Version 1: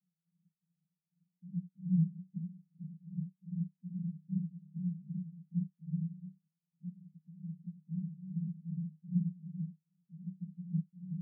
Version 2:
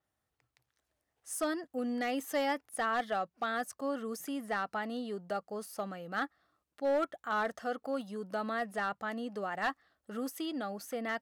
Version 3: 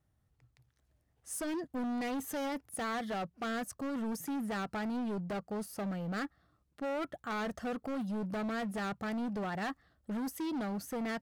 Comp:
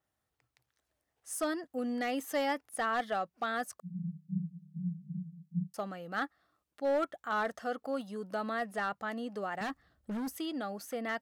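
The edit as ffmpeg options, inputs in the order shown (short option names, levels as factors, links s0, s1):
-filter_complex "[1:a]asplit=3[s0][s1][s2];[s0]atrim=end=3.802[s3];[0:a]atrim=start=3.798:end=5.742[s4];[s1]atrim=start=5.738:end=9.612[s5];[2:a]atrim=start=9.608:end=10.372[s6];[s2]atrim=start=10.368[s7];[s3][s4]acrossfade=d=0.004:c1=hsin:c2=hsin[s8];[s8][s5]acrossfade=d=0.004:c1=hsin:c2=hsin[s9];[s9][s6]acrossfade=d=0.004:c1=hsin:c2=hsin[s10];[s10][s7]acrossfade=d=0.004:c1=hsin:c2=hsin"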